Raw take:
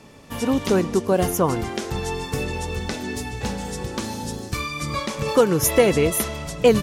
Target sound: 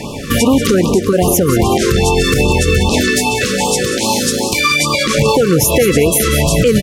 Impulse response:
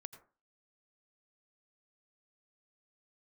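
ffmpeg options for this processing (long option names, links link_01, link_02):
-filter_complex "[0:a]acompressor=threshold=-28dB:ratio=6,asettb=1/sr,asplit=3[link_01][link_02][link_03];[link_01]atrim=end=3.014[link_04];[link_02]atrim=start=3.01:end=5.06,asetpts=PTS-STARTPTS,afade=type=in:duration=0.004:curve=qsin,afade=type=out:start_time=2.046:duration=0.004:curve=qsin,highpass=frequency=470:poles=1[link_05];[link_03]atrim=start=5.056[link_06];[link_04][link_05]acrossfade=duration=0.004:curve1=hsin:curve2=qsin[link_07];[link_07][link_06]acrossfade=duration=0.004:curve1=qsin:curve2=hsin,aecho=1:1:186|372|558|744|930:0.224|0.103|0.0474|0.0218|0.01,alimiter=level_in=24dB:limit=-1dB:release=50:level=0:latency=1,afftfilt=real='re*(1-between(b*sr/1024,730*pow(1800/730,0.5+0.5*sin(2*PI*2.5*pts/sr))/1.41,730*pow(1800/730,0.5+0.5*sin(2*PI*2.5*pts/sr))*1.41))':imag='im*(1-between(b*sr/1024,730*pow(1800/730,0.5+0.5*sin(2*PI*2.5*pts/sr))/1.41,730*pow(1800/730,0.5+0.5*sin(2*PI*2.5*pts/sr))*1.41))':win_size=1024:overlap=0.75,volume=-1.5dB"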